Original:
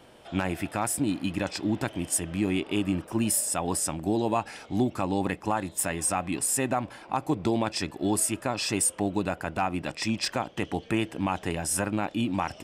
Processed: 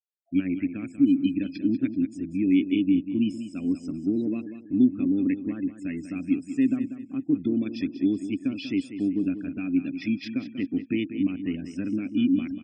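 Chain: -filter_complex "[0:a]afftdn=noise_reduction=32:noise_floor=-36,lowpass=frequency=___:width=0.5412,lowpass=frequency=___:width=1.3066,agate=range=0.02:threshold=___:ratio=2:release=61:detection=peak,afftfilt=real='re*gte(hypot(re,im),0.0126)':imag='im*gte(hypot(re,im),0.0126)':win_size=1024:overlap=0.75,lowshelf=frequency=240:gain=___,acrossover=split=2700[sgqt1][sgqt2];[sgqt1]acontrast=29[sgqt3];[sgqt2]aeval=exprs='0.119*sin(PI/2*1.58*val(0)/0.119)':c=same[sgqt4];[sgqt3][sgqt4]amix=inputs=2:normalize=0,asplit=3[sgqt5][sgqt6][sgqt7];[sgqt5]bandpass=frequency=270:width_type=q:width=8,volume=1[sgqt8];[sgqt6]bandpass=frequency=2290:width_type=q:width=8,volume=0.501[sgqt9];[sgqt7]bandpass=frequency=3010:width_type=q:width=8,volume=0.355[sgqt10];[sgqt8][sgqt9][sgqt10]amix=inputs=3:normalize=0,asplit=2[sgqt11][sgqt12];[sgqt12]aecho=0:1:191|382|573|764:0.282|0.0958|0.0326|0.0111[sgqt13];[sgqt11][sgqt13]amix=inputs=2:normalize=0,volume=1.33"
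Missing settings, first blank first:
6300, 6300, 0.00224, 10.5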